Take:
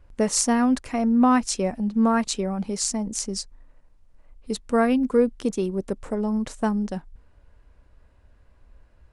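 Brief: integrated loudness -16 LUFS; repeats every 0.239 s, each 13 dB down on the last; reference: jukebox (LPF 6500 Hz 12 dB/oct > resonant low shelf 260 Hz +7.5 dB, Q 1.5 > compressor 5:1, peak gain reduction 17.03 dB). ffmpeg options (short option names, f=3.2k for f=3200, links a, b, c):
-af "lowpass=6.5k,lowshelf=f=260:t=q:w=1.5:g=7.5,aecho=1:1:239|478|717:0.224|0.0493|0.0108,acompressor=threshold=-29dB:ratio=5,volume=15.5dB"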